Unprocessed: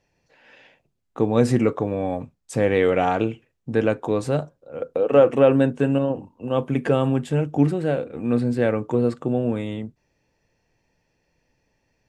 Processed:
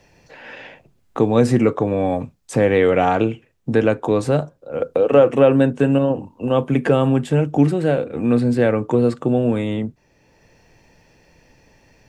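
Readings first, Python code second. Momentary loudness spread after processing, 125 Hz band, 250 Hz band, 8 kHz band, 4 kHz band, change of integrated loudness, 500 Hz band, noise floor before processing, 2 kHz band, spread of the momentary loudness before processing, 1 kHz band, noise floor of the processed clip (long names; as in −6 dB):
11 LU, +4.0 dB, +4.0 dB, can't be measured, +4.0 dB, +4.0 dB, +3.5 dB, −72 dBFS, +4.0 dB, 13 LU, +4.0 dB, −59 dBFS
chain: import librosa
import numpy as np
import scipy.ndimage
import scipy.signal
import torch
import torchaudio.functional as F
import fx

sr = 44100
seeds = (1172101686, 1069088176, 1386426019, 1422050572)

y = fx.band_squash(x, sr, depth_pct=40)
y = y * librosa.db_to_amplitude(4.0)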